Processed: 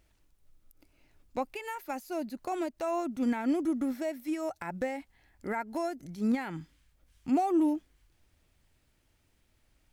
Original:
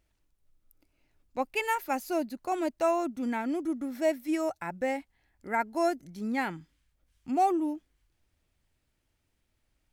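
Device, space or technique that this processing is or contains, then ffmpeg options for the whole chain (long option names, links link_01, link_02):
de-esser from a sidechain: -filter_complex "[0:a]asplit=2[link_01][link_02];[link_02]highpass=4400,apad=whole_len=437523[link_03];[link_01][link_03]sidechaincompress=threshold=-58dB:ratio=3:attack=1:release=99,volume=6dB"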